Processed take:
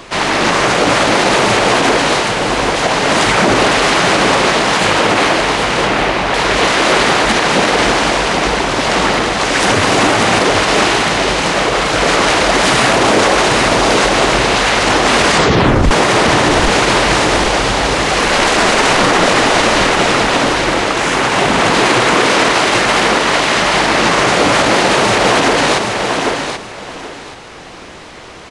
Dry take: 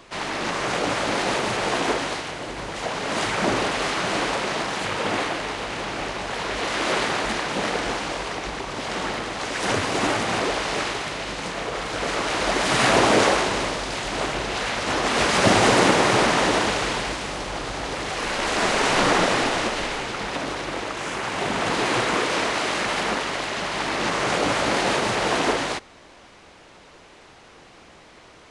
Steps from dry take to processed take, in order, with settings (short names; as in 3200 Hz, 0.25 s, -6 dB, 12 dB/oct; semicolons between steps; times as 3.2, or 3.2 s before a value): 5.87–6.34 LPF 3900 Hz; 15.31 tape stop 0.60 s; feedback echo 0.781 s, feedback 22%, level -8 dB; maximiser +15 dB; gain -1 dB